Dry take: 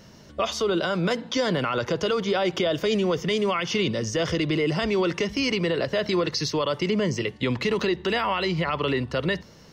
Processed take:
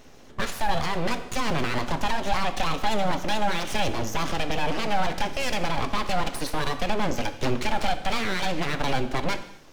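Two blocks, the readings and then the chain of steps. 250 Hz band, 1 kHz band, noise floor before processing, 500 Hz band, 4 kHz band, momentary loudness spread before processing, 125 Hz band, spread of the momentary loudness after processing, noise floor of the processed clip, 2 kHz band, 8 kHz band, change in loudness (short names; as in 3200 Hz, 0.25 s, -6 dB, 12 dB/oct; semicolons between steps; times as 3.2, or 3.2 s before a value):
-5.0 dB, +4.0 dB, -49 dBFS, -6.5 dB, -2.5 dB, 3 LU, -3.0 dB, 3 LU, -46 dBFS, -0.5 dB, +0.5 dB, -2.5 dB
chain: thirty-one-band EQ 125 Hz +7 dB, 400 Hz +5 dB, 5000 Hz -7 dB; full-wave rectifier; non-linear reverb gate 0.29 s falling, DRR 9 dB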